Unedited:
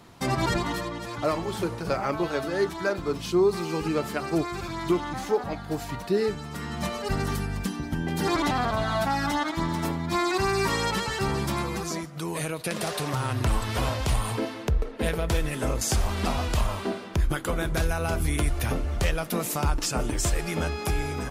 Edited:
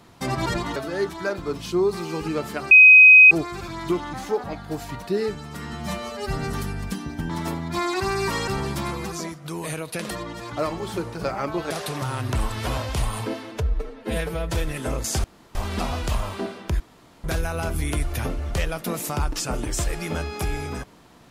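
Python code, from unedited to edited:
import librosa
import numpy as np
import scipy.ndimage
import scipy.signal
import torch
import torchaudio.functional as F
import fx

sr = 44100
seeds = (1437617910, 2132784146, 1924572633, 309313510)

y = fx.edit(x, sr, fx.move(start_s=0.76, length_s=1.6, to_s=12.82),
    fx.insert_tone(at_s=4.31, length_s=0.6, hz=2520.0, db=-6.0),
    fx.stretch_span(start_s=6.73, length_s=0.53, factor=1.5),
    fx.cut(start_s=8.03, length_s=1.64),
    fx.cut(start_s=10.85, length_s=0.34),
    fx.stretch_span(start_s=14.63, length_s=0.69, factor=1.5),
    fx.insert_room_tone(at_s=16.01, length_s=0.31),
    fx.room_tone_fill(start_s=17.26, length_s=0.44), tone=tone)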